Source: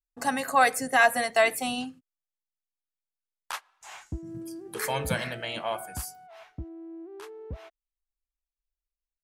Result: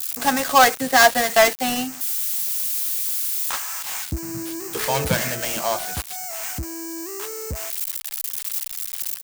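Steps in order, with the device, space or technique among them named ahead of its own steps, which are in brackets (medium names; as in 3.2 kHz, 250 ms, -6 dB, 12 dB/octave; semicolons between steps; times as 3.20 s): budget class-D amplifier (dead-time distortion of 0.13 ms; zero-crossing glitches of -21.5 dBFS); trim +7.5 dB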